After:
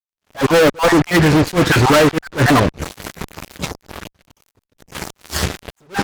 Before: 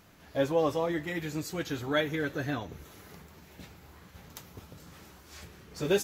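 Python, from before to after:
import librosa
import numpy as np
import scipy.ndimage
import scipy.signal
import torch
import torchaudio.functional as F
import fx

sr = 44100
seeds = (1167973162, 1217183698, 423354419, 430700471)

y = fx.spec_dropout(x, sr, seeds[0], share_pct=28)
y = fx.env_lowpass_down(y, sr, base_hz=1600.0, full_db=-29.5)
y = fx.dynamic_eq(y, sr, hz=1100.0, q=2.0, threshold_db=-49.0, ratio=4.0, max_db=5)
y = fx.fuzz(y, sr, gain_db=45.0, gate_db=-49.0)
y = fx.attack_slew(y, sr, db_per_s=310.0)
y = y * librosa.db_to_amplitude(4.0)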